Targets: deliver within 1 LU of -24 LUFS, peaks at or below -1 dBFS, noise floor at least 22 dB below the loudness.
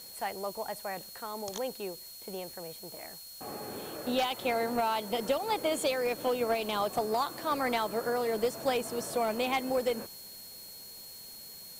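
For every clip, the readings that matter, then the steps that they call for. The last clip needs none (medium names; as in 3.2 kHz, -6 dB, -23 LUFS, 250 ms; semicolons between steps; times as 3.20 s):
steady tone 4.3 kHz; tone level -49 dBFS; noise floor -48 dBFS; noise floor target -55 dBFS; loudness -32.5 LUFS; peak level -17.5 dBFS; loudness target -24.0 LUFS
-> band-stop 4.3 kHz, Q 30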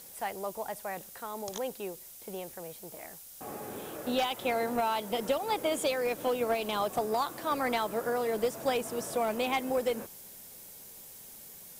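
steady tone not found; noise floor -50 dBFS; noise floor target -55 dBFS
-> noise print and reduce 6 dB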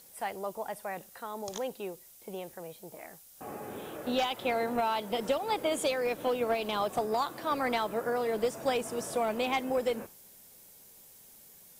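noise floor -55 dBFS; loudness -32.5 LUFS; peak level -18.0 dBFS; loudness target -24.0 LUFS
-> trim +8.5 dB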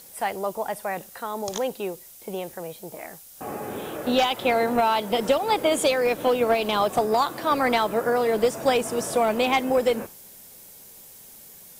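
loudness -24.0 LUFS; peak level -9.5 dBFS; noise floor -47 dBFS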